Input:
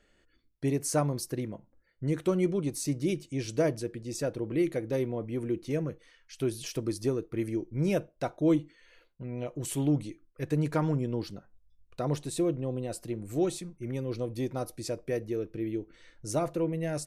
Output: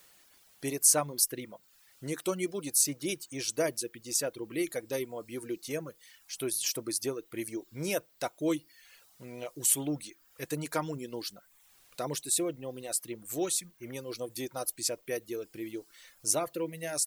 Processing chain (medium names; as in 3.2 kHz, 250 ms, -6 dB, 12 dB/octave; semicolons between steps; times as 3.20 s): RIAA curve recording; word length cut 10-bit, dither triangular; reverb removal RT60 0.69 s